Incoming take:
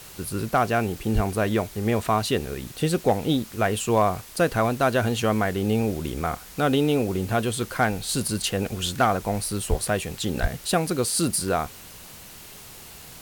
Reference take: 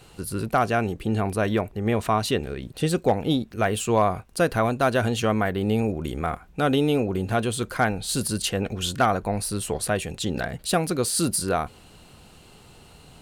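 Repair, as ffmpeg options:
-filter_complex "[0:a]asplit=3[s0][s1][s2];[s0]afade=t=out:st=1.14:d=0.02[s3];[s1]highpass=f=140:w=0.5412,highpass=f=140:w=1.3066,afade=t=in:st=1.14:d=0.02,afade=t=out:st=1.26:d=0.02[s4];[s2]afade=t=in:st=1.26:d=0.02[s5];[s3][s4][s5]amix=inputs=3:normalize=0,asplit=3[s6][s7][s8];[s6]afade=t=out:st=9.69:d=0.02[s9];[s7]highpass=f=140:w=0.5412,highpass=f=140:w=1.3066,afade=t=in:st=9.69:d=0.02,afade=t=out:st=9.81:d=0.02[s10];[s8]afade=t=in:st=9.81:d=0.02[s11];[s9][s10][s11]amix=inputs=3:normalize=0,asplit=3[s12][s13][s14];[s12]afade=t=out:st=10.41:d=0.02[s15];[s13]highpass=f=140:w=0.5412,highpass=f=140:w=1.3066,afade=t=in:st=10.41:d=0.02,afade=t=out:st=10.53:d=0.02[s16];[s14]afade=t=in:st=10.53:d=0.02[s17];[s15][s16][s17]amix=inputs=3:normalize=0,afwtdn=0.0063"

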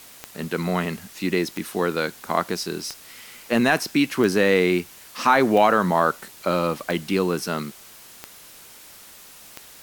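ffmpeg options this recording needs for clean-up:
-af "adeclick=t=4,afftdn=nr=21:nf=-46"

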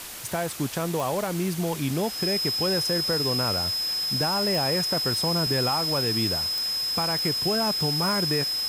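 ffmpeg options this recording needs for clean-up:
-af "adeclick=t=4,bandreject=f=5100:w=30,afwtdn=0.014"

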